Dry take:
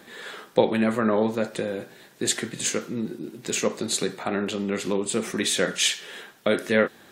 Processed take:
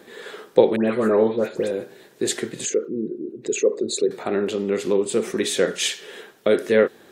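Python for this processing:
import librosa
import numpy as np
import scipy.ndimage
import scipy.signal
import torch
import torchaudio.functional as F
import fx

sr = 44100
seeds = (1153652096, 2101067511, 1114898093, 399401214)

y = fx.envelope_sharpen(x, sr, power=2.0, at=(2.65, 4.11))
y = fx.peak_eq(y, sr, hz=420.0, db=9.5, octaves=0.83)
y = fx.dispersion(y, sr, late='highs', ms=116.0, hz=2100.0, at=(0.76, 1.71))
y = y * librosa.db_to_amplitude(-1.5)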